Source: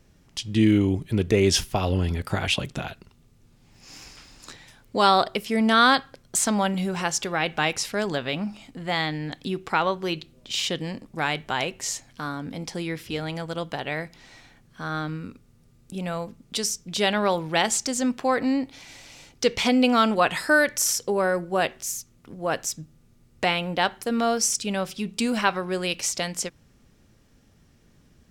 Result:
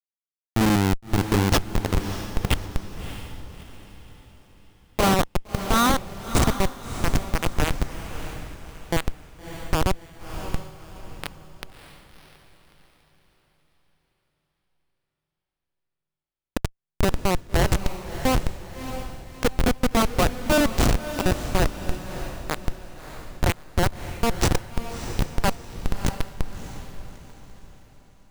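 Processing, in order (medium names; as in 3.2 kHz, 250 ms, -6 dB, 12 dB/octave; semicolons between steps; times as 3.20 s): Schmitt trigger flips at -16 dBFS; echo that smears into a reverb 628 ms, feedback 40%, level -10 dB; trim +8.5 dB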